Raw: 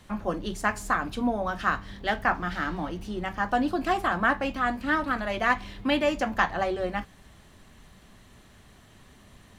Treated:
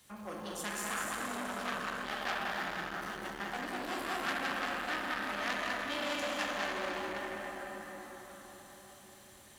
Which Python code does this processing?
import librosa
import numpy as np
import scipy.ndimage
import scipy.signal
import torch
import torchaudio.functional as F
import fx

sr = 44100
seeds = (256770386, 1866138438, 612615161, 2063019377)

y = fx.highpass(x, sr, hz=110.0, slope=6)
y = F.preemphasis(torch.from_numpy(y), 0.8).numpy()
y = fx.hum_notches(y, sr, base_hz=60, count=3)
y = y + 10.0 ** (-3.5 / 20.0) * np.pad(y, (int(200 * sr / 1000.0), 0))[:len(y)]
y = fx.rev_plate(y, sr, seeds[0], rt60_s=5.0, hf_ratio=0.6, predelay_ms=0, drr_db=-4.0)
y = fx.transformer_sat(y, sr, knee_hz=3100.0)